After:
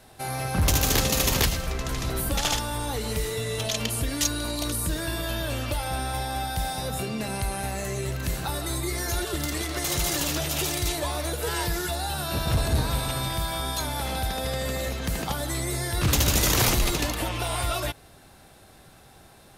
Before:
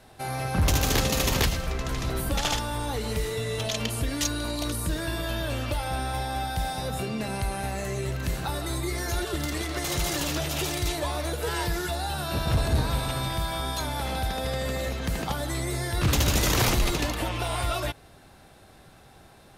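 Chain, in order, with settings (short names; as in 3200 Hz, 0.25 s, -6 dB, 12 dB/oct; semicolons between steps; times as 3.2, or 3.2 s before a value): high shelf 5900 Hz +6.5 dB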